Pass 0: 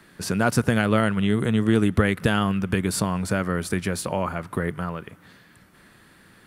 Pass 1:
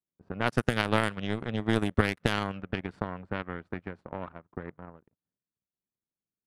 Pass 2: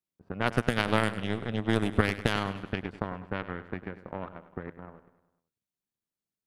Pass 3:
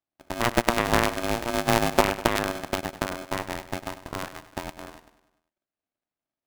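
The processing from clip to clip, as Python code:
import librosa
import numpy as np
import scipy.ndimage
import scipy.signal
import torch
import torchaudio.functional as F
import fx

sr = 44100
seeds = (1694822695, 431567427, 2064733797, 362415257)

y1 = fx.power_curve(x, sr, exponent=2.0)
y1 = fx.env_lowpass(y1, sr, base_hz=660.0, full_db=-22.5)
y2 = fx.echo_feedback(y1, sr, ms=100, feedback_pct=54, wet_db=-14.0)
y3 = fx.air_absorb(y2, sr, metres=410.0)
y3 = y3 * np.sign(np.sin(2.0 * np.pi * 470.0 * np.arange(len(y3)) / sr))
y3 = y3 * 10.0 ** (5.0 / 20.0)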